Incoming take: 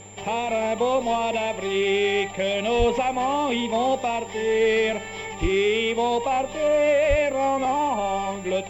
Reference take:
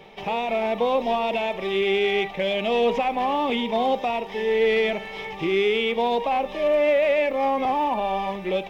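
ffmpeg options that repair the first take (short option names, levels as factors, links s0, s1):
-filter_complex "[0:a]bandreject=f=101.4:t=h:w=4,bandreject=f=202.8:t=h:w=4,bandreject=f=304.2:t=h:w=4,bandreject=f=405.6:t=h:w=4,bandreject=f=507:t=h:w=4,bandreject=f=7300:w=30,asplit=3[s0][s1][s2];[s0]afade=t=out:st=2.78:d=0.02[s3];[s1]highpass=f=140:w=0.5412,highpass=f=140:w=1.3066,afade=t=in:st=2.78:d=0.02,afade=t=out:st=2.9:d=0.02[s4];[s2]afade=t=in:st=2.9:d=0.02[s5];[s3][s4][s5]amix=inputs=3:normalize=0,asplit=3[s6][s7][s8];[s6]afade=t=out:st=5.41:d=0.02[s9];[s7]highpass=f=140:w=0.5412,highpass=f=140:w=1.3066,afade=t=in:st=5.41:d=0.02,afade=t=out:st=5.53:d=0.02[s10];[s8]afade=t=in:st=5.53:d=0.02[s11];[s9][s10][s11]amix=inputs=3:normalize=0,asplit=3[s12][s13][s14];[s12]afade=t=out:st=7.09:d=0.02[s15];[s13]highpass=f=140:w=0.5412,highpass=f=140:w=1.3066,afade=t=in:st=7.09:d=0.02,afade=t=out:st=7.21:d=0.02[s16];[s14]afade=t=in:st=7.21:d=0.02[s17];[s15][s16][s17]amix=inputs=3:normalize=0"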